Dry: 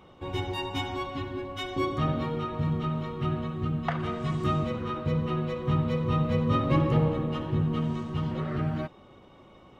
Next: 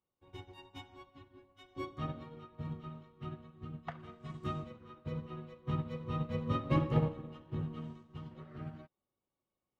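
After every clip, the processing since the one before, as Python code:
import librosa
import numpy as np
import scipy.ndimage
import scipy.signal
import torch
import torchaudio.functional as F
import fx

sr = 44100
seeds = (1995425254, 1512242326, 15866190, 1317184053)

y = fx.upward_expand(x, sr, threshold_db=-43.0, expansion=2.5)
y = F.gain(torch.from_numpy(y), -3.5).numpy()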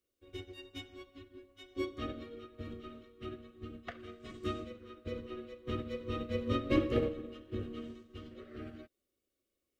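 y = fx.fixed_phaser(x, sr, hz=370.0, stages=4)
y = F.gain(torch.from_numpy(y), 6.5).numpy()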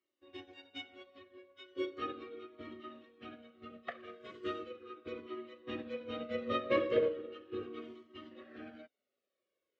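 y = fx.bandpass_edges(x, sr, low_hz=300.0, high_hz=3300.0)
y = fx.comb_cascade(y, sr, direction='falling', hz=0.37)
y = F.gain(torch.from_numpy(y), 6.5).numpy()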